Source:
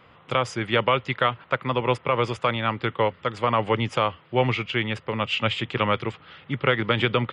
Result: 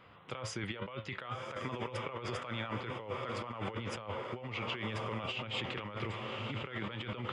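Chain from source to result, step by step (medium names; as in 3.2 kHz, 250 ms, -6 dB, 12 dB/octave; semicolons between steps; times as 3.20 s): echo that smears into a reverb 1134 ms, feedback 52%, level -11.5 dB; flange 2 Hz, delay 9 ms, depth 2.1 ms, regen +70%; compressor with a negative ratio -34 dBFS, ratio -1; trim -6 dB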